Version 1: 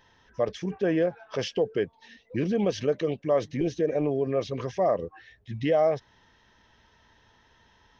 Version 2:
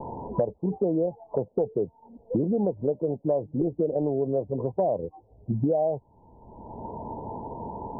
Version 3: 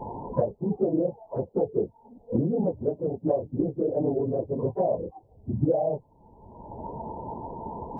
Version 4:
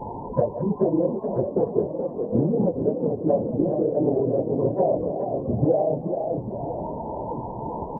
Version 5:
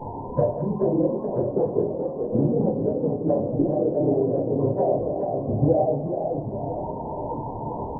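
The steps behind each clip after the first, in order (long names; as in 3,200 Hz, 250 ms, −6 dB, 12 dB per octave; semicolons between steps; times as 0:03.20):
Butterworth low-pass 950 Hz 96 dB per octave; multiband upward and downward compressor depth 100%
random phases in long frames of 50 ms
feedback delay that plays each chunk backwards 501 ms, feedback 69%, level −10 dB; echo with shifted repeats 427 ms, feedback 46%, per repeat +41 Hz, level −8 dB; level +3 dB
convolution reverb RT60 0.65 s, pre-delay 6 ms, DRR 4 dB; level −1.5 dB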